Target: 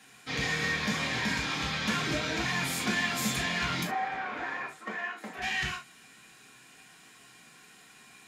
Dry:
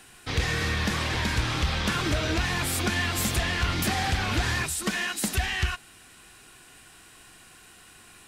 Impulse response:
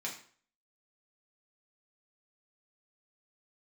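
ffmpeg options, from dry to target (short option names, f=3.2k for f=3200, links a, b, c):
-filter_complex "[0:a]asettb=1/sr,asplit=3[a][b][c];[a]atrim=end=3.834[d];[b]atrim=start=3.83:end=5.42,asetpts=PTS-STARTPTS,afade=t=in:d=0.004:c=qsin,afade=t=out:st=1.586:d=0.004:c=qsin,acrossover=split=340 2000:gain=0.112 1 0.0708[e][f][g];[e][f][g]amix=inputs=3:normalize=0[h];[c]atrim=start=5.416[i];[d][h]acrossfade=d=0.004:c1=hsin:c2=qsin[j];[j][i]acrossfade=d=0.004:c1=qsin:c2=hsin[k];[1:a]atrim=start_sample=2205,afade=t=out:st=0.13:d=0.01,atrim=end_sample=6174[l];[k][l]afir=irnorm=-1:irlink=0,volume=-3.5dB"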